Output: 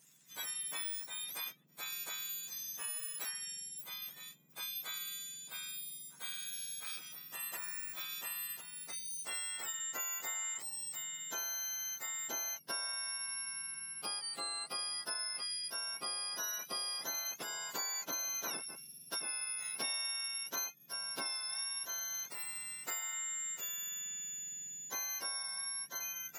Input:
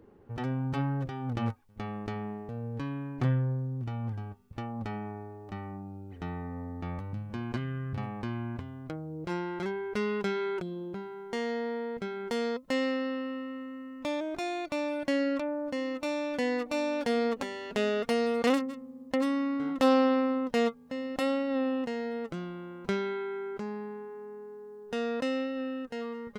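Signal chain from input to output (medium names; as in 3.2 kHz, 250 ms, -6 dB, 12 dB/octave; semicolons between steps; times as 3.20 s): spectrum inverted on a logarithmic axis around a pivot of 1.7 kHz; compression 4:1, threshold -38 dBFS, peak gain reduction 14 dB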